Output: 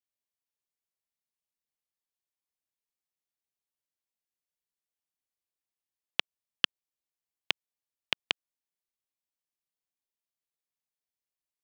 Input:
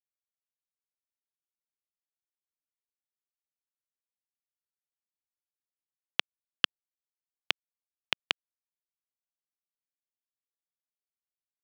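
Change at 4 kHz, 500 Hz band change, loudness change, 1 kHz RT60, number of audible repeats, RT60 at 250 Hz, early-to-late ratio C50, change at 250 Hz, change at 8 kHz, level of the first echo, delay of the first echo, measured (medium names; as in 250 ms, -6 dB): 0.0 dB, 0.0 dB, 0.0 dB, no reverb, no echo, no reverb, no reverb, 0.0 dB, 0.0 dB, no echo, no echo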